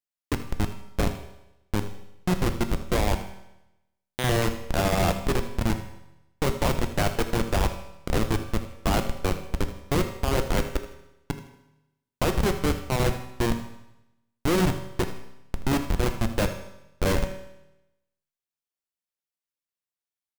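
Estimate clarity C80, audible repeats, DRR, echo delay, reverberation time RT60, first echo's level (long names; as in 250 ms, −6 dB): 12.0 dB, 1, 6.5 dB, 79 ms, 0.90 s, −14.5 dB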